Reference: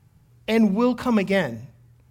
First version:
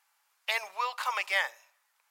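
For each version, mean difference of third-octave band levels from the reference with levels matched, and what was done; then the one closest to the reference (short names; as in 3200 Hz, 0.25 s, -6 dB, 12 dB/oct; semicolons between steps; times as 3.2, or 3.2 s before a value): 12.0 dB: inverse Chebyshev high-pass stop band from 260 Hz, stop band 60 dB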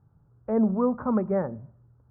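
5.5 dB: elliptic low-pass 1400 Hz, stop band 60 dB; gain -3.5 dB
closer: second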